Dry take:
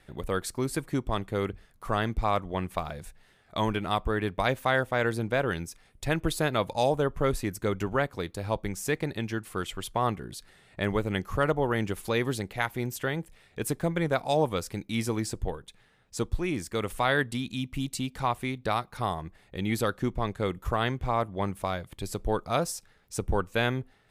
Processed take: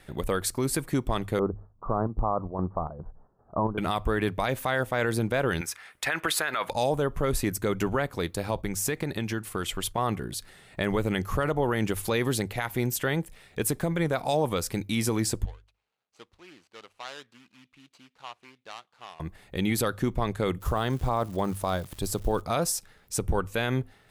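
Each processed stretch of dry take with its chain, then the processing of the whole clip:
1.39–3.78 s: steep low-pass 1.2 kHz 48 dB/octave + square tremolo 2.5 Hz, depth 60%, duty 70%
5.61–6.70 s: high-pass 640 Hz 6 dB/octave + peaking EQ 1.6 kHz +13.5 dB 1.9 oct
8.55–9.98 s: gate -48 dBFS, range -6 dB + compression, threshold -29 dBFS
15.45–19.20 s: median filter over 25 samples + low-pass 3.4 kHz + differentiator
20.60–22.40 s: peaking EQ 2.2 kHz -8.5 dB 0.76 oct + crackle 480 per s -46 dBFS
whole clip: treble shelf 10 kHz +6.5 dB; hum notches 50/100 Hz; peak limiter -21 dBFS; trim +5 dB

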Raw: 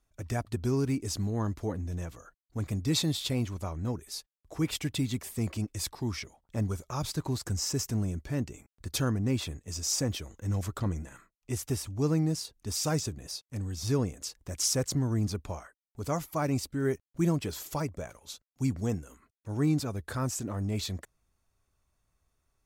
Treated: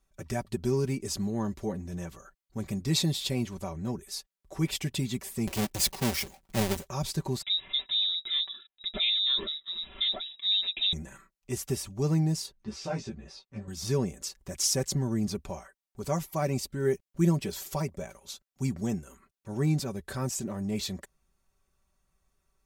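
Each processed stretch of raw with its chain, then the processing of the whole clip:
5.47–6.87 s: square wave that keeps the level + treble shelf 4 kHz +6 dB
7.42–10.93 s: comb 2.9 ms, depth 56% + frequency inversion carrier 3.8 kHz
12.52–13.68 s: low-pass 3.2 kHz + doubling 18 ms -5 dB + three-phase chorus
whole clip: comb 5.2 ms, depth 63%; dynamic bell 1.3 kHz, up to -6 dB, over -53 dBFS, Q 2.7

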